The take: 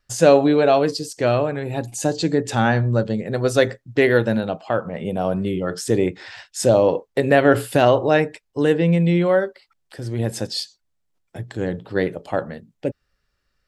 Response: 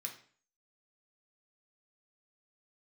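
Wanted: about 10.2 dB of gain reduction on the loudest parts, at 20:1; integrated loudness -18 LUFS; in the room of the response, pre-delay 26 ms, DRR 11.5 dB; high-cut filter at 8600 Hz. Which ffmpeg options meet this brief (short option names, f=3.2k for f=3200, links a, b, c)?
-filter_complex "[0:a]lowpass=8.6k,acompressor=threshold=-18dB:ratio=20,asplit=2[a][b];[1:a]atrim=start_sample=2205,adelay=26[c];[b][c]afir=irnorm=-1:irlink=0,volume=-9.5dB[d];[a][d]amix=inputs=2:normalize=0,volume=7dB"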